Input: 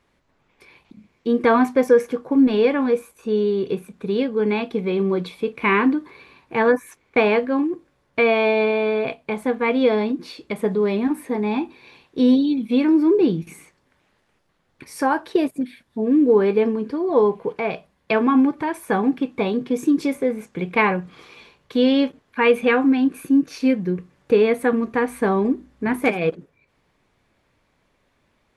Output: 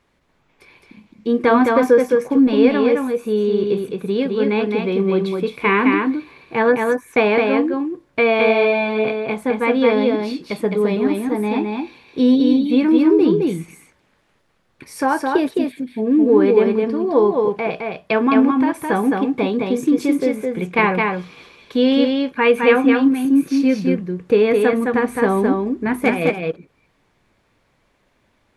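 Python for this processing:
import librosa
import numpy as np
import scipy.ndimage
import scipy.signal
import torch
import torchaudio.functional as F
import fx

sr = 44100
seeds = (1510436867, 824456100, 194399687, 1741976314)

y = x + 10.0 ** (-3.5 / 20.0) * np.pad(x, (int(213 * sr / 1000.0), 0))[:len(x)]
y = y * 10.0 ** (1.5 / 20.0)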